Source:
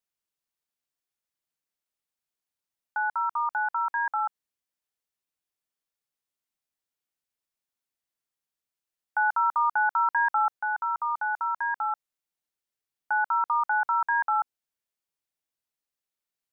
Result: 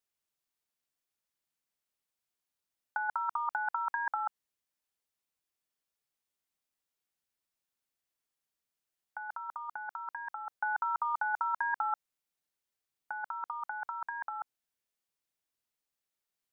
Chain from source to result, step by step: negative-ratio compressor -29 dBFS, ratio -0.5; gain -4.5 dB

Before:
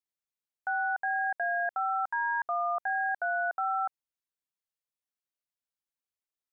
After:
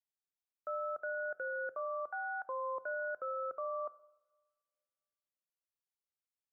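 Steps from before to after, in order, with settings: frequency shift -170 Hz; two-slope reverb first 0.85 s, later 2.4 s, from -23 dB, DRR 15 dB; gain -8.5 dB

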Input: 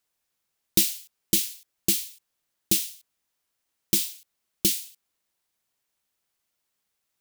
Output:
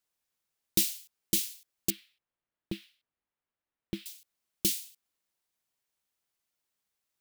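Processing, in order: 1.9–4.06 air absorption 450 m; gain -5.5 dB

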